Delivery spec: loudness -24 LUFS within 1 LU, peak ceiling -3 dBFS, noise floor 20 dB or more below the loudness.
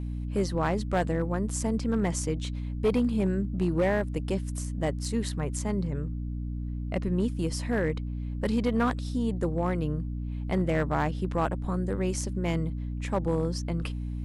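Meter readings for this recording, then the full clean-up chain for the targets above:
clipped 0.6%; flat tops at -18.5 dBFS; hum 60 Hz; harmonics up to 300 Hz; hum level -30 dBFS; loudness -29.5 LUFS; peak -18.5 dBFS; loudness target -24.0 LUFS
-> clip repair -18.5 dBFS; de-hum 60 Hz, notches 5; gain +5.5 dB

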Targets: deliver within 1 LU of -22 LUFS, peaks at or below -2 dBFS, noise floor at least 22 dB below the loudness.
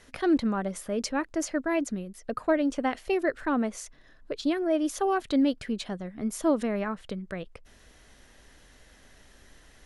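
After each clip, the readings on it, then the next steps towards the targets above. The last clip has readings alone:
loudness -29.0 LUFS; peak -14.5 dBFS; loudness target -22.0 LUFS
-> gain +7 dB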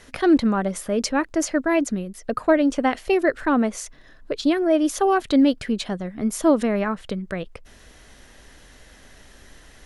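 loudness -22.0 LUFS; peak -7.5 dBFS; noise floor -49 dBFS

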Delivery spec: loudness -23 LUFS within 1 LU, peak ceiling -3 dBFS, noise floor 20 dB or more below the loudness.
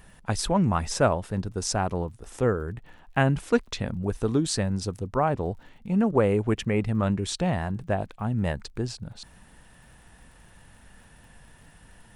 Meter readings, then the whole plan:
ticks 42/s; loudness -27.0 LUFS; peak -7.5 dBFS; loudness target -23.0 LUFS
-> de-click; gain +4 dB

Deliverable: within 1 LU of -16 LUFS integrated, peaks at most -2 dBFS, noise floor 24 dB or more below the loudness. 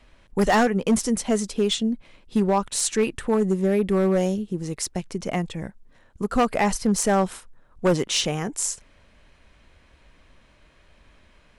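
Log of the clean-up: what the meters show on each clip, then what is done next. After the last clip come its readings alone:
clipped 1.4%; flat tops at -14.0 dBFS; loudness -23.5 LUFS; peak -14.0 dBFS; loudness target -16.0 LUFS
-> clip repair -14 dBFS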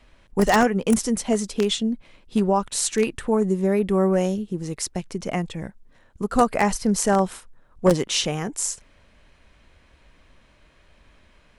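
clipped 0.0%; loudness -23.0 LUFS; peak -5.0 dBFS; loudness target -16.0 LUFS
-> gain +7 dB; limiter -2 dBFS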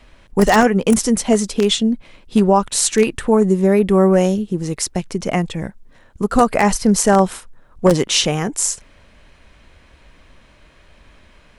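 loudness -16.5 LUFS; peak -2.0 dBFS; noise floor -50 dBFS

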